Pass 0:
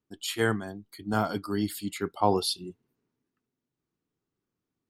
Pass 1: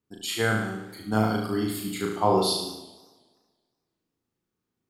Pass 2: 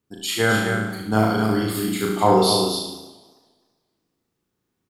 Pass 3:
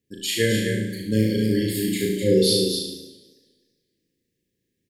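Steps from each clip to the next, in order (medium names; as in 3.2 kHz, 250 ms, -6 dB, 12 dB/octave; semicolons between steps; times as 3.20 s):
flutter echo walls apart 6.3 m, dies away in 0.76 s; modulated delay 94 ms, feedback 67%, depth 197 cents, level -19.5 dB
loudspeakers at several distances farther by 20 m -9 dB, 88 m -6 dB; trim +5 dB
brick-wall FIR band-stop 580–1600 Hz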